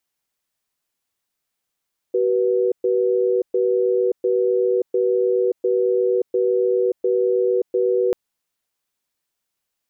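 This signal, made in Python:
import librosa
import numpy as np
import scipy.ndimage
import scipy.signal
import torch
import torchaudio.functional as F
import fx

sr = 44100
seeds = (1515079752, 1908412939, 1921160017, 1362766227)

y = fx.cadence(sr, length_s=5.99, low_hz=379.0, high_hz=487.0, on_s=0.58, off_s=0.12, level_db=-18.5)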